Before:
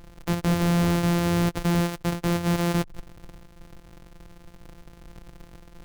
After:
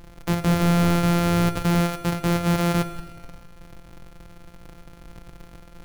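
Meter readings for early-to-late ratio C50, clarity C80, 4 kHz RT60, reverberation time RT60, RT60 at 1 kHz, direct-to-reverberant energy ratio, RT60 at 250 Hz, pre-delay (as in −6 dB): 11.5 dB, 12.5 dB, 1.4 s, 1.4 s, 1.4 s, 9.5 dB, 1.4 s, 7 ms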